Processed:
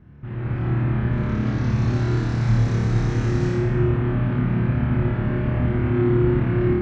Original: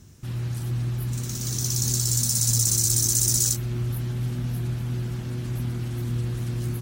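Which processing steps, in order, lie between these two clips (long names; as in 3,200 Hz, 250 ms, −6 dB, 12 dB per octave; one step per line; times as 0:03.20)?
low-pass filter 2,100 Hz 24 dB per octave
automatic gain control gain up to 9 dB
flutter between parallel walls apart 4.8 metres, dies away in 0.96 s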